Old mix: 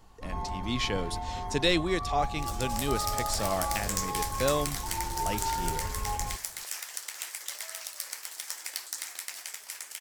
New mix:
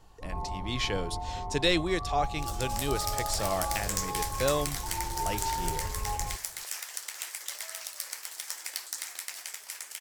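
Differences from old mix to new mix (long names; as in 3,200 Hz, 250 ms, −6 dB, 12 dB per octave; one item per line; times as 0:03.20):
first sound: add Savitzky-Golay smoothing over 65 samples
master: add parametric band 230 Hz −8.5 dB 0.28 octaves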